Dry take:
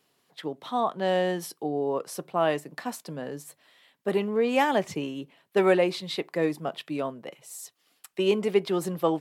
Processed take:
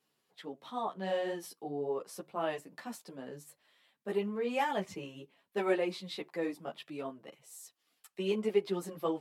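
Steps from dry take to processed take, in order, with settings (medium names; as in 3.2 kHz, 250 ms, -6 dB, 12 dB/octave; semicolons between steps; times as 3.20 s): three-phase chorus; trim -6 dB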